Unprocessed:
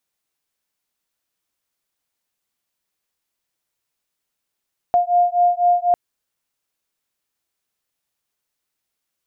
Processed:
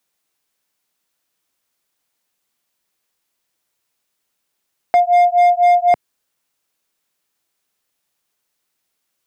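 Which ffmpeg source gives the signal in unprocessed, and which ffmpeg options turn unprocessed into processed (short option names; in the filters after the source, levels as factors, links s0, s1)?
-f lavfi -i "aevalsrc='0.15*(sin(2*PI*704*t)+sin(2*PI*708*t))':d=1:s=44100"
-filter_complex "[0:a]acrossover=split=130[s0][s1];[s1]acontrast=48[s2];[s0][s2]amix=inputs=2:normalize=0,asoftclip=type=hard:threshold=0.376"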